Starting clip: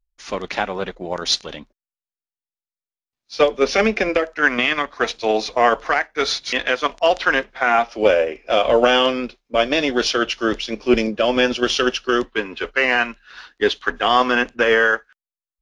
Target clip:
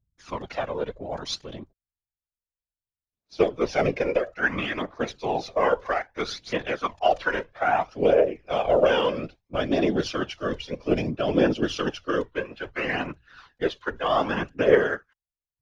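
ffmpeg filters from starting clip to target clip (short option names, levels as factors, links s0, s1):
-af "tiltshelf=f=1200:g=5,afftfilt=real='hypot(re,im)*cos(2*PI*random(0))':imag='hypot(re,im)*sin(2*PI*random(1))':win_size=512:overlap=0.75,aphaser=in_gain=1:out_gain=1:delay=2.2:decay=0.48:speed=0.61:type=triangular,volume=0.668"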